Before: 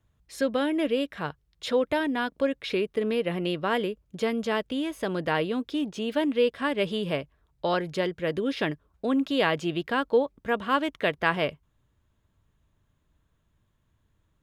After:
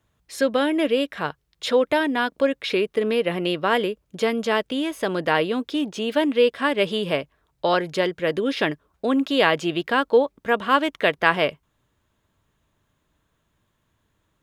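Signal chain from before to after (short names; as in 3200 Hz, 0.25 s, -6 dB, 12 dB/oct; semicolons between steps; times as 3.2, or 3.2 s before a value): low shelf 150 Hz -12 dB; gain +6.5 dB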